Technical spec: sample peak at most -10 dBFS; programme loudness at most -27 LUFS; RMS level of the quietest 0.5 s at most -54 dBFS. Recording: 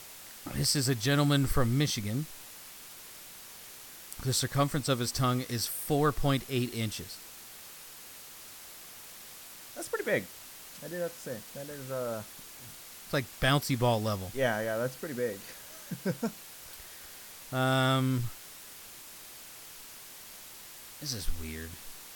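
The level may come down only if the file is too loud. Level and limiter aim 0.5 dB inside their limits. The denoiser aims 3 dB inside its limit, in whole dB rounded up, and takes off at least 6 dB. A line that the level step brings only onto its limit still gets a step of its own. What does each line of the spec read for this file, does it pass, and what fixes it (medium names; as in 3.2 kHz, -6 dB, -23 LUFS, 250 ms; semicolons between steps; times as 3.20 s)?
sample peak -12.5 dBFS: pass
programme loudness -31.0 LUFS: pass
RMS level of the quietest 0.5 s -48 dBFS: fail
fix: noise reduction 9 dB, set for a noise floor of -48 dBFS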